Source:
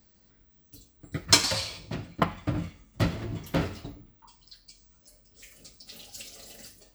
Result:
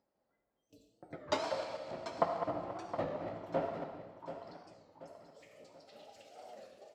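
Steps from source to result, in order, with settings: 1.36–3.84 s: backward echo that repeats 138 ms, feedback 61%, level -8 dB; spectral noise reduction 27 dB; gate with hold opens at -56 dBFS; upward compressor, threshold -34 dBFS; band-pass filter 660 Hz, Q 2.2; feedback delay 733 ms, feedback 43%, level -11 dB; reverberation RT60 1.1 s, pre-delay 30 ms, DRR 5.5 dB; warped record 33 1/3 rpm, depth 160 cents

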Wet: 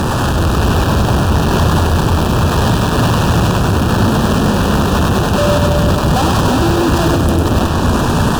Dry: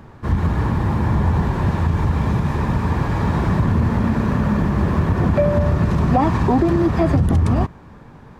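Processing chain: compression, threshold -28 dBFS, peak gain reduction 15.5 dB; fuzz box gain 57 dB, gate -55 dBFS; Butterworth band-stop 2.1 kHz, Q 2.6; on a send: two-band feedback delay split 630 Hz, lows 320 ms, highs 100 ms, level -4 dB

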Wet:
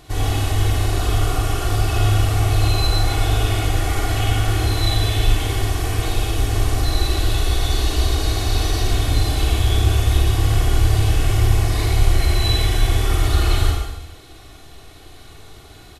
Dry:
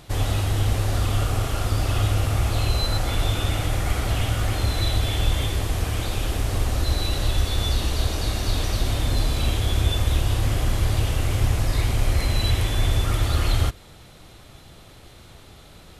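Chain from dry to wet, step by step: comb 2.7 ms, depth 60%; reverberation RT60 1.0 s, pre-delay 39 ms, DRR -1.5 dB; trim -1 dB

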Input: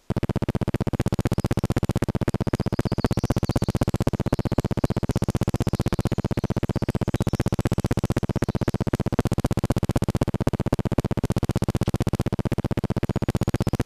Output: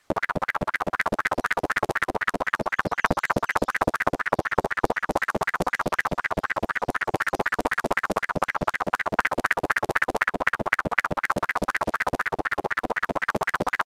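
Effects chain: early reflections 11 ms -18 dB, 60 ms -5.5 dB; transient shaper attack +4 dB, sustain -8 dB; ring modulator with a swept carrier 1.1 kHz, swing 65%, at 4 Hz; trim -1 dB

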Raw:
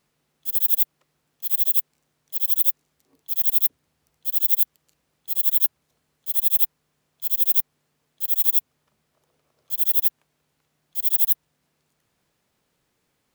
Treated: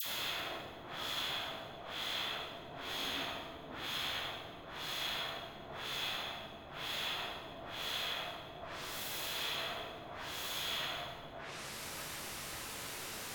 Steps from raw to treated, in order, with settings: reverse spectral sustain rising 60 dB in 2.74 s; in parallel at -11.5 dB: word length cut 6-bit, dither triangular; on the sum: treble shelf 4.2 kHz -8.5 dB; phase dispersion lows, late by 60 ms, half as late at 1.4 kHz; dynamic bell 1.3 kHz, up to +6 dB, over -56 dBFS, Q 0.86; low-pass that closes with the level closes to 460 Hz, closed at -17 dBFS; plate-style reverb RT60 1.3 s, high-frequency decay 0.9×, DRR 0.5 dB; trim +6.5 dB

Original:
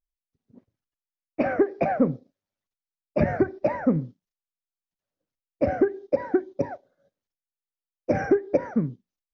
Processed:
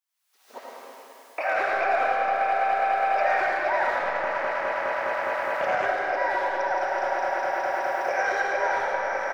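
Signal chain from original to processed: backward echo that repeats 103 ms, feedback 84%, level -13.5 dB; recorder AGC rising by 61 dB/s; high-pass 790 Hz 24 dB/octave; peak limiter -25 dBFS, peak gain reduction 11 dB; speakerphone echo 110 ms, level -6 dB; reverberation RT60 2.4 s, pre-delay 40 ms, DRR -3 dB; 3.99–5.86 s: loudspeaker Doppler distortion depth 0.16 ms; trim +5.5 dB

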